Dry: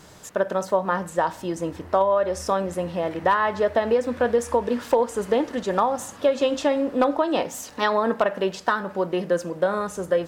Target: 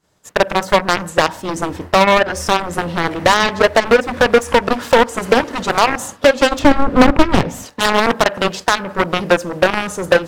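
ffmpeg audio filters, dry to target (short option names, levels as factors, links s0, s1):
-filter_complex "[0:a]agate=range=0.0224:threshold=0.0251:ratio=3:detection=peak,aeval=exprs='0.422*(cos(1*acos(clip(val(0)/0.422,-1,1)))-cos(1*PI/2))+0.119*(cos(3*acos(clip(val(0)/0.422,-1,1)))-cos(3*PI/2))+0.00668*(cos(5*acos(clip(val(0)/0.422,-1,1)))-cos(5*PI/2))+0.0266*(cos(7*acos(clip(val(0)/0.422,-1,1)))-cos(7*PI/2))':c=same,asplit=2[s0][s1];[s1]acompressor=threshold=0.02:ratio=6,volume=0.891[s2];[s0][s2]amix=inputs=2:normalize=0,asettb=1/sr,asplit=3[s3][s4][s5];[s3]atrim=end=6.594[s6];[s4]atrim=start=6.59:end=7.66,asetpts=PTS-STARTPTS,afade=t=in:d=0.004:c=qsin,afade=t=out:st=1.066:d=0.004:c=qsin,bass=f=250:g=12,treble=f=4000:g=-8[s7];[s5]atrim=start=7.656[s8];[s6][s7]acrossfade=d=0.004:c1=hsin:c2=qsin[s9];[s9][s8]acrossfade=d=0.004:c1=qsin:c2=hsin,acrossover=split=5900[s10][s11];[s10]asoftclip=type=hard:threshold=0.106[s12];[s12][s11]amix=inputs=2:normalize=0,alimiter=level_in=10:limit=0.891:release=50:level=0:latency=1,volume=0.891"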